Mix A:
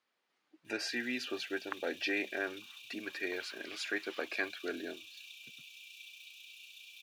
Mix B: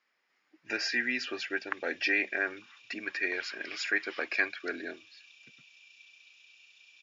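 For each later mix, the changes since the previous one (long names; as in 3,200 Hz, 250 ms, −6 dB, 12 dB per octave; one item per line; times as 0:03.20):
speech +9.5 dB
master: add Chebyshev low-pass with heavy ripple 7,100 Hz, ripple 9 dB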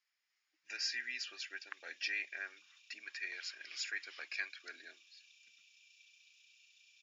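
master: add first difference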